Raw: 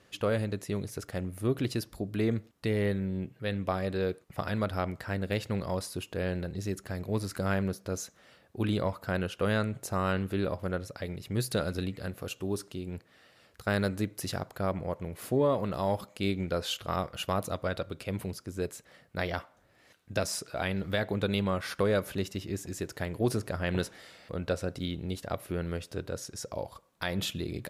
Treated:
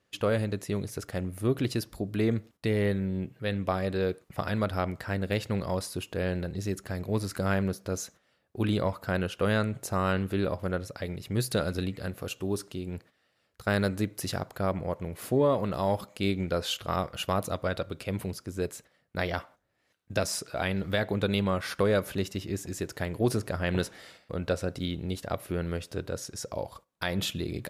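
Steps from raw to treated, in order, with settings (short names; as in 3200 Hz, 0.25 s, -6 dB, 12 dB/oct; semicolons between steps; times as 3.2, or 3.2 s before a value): gate -52 dBFS, range -14 dB; gain +2 dB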